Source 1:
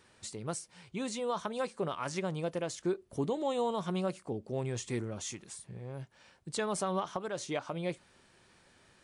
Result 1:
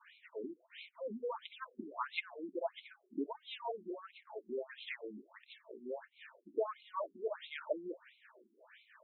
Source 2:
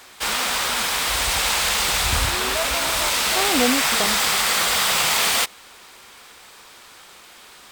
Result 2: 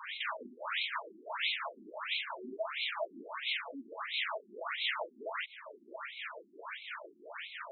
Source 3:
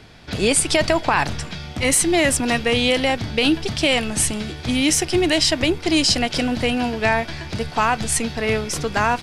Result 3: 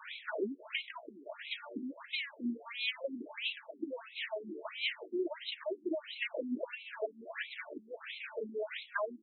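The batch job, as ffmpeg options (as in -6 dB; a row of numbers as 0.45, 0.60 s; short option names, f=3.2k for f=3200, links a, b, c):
-filter_complex "[0:a]lowpass=4.4k,acrossover=split=960[a][b];[a]aeval=exprs='val(0)*(1-0.7/2+0.7/2*cos(2*PI*4.4*n/s))':c=same[c];[b]aeval=exprs='val(0)*(1-0.7/2-0.7/2*cos(2*PI*4.4*n/s))':c=same[d];[c][d]amix=inputs=2:normalize=0,equalizer=f=640:t=o:w=0.21:g=10.5,acompressor=threshold=-40dB:ratio=6,lowshelf=f=210:g=-10,flanger=delay=1.8:depth=6.6:regen=-41:speed=0.89:shape=sinusoidal,asuperstop=centerf=760:order=20:qfactor=6.5,afftfilt=real='re*between(b*sr/1024,260*pow(3000/260,0.5+0.5*sin(2*PI*1.5*pts/sr))/1.41,260*pow(3000/260,0.5+0.5*sin(2*PI*1.5*pts/sr))*1.41)':imag='im*between(b*sr/1024,260*pow(3000/260,0.5+0.5*sin(2*PI*1.5*pts/sr))/1.41,260*pow(3000/260,0.5+0.5*sin(2*PI*1.5*pts/sr))*1.41)':win_size=1024:overlap=0.75,volume=15dB"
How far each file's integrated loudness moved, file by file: -7.0, -19.5, -20.5 LU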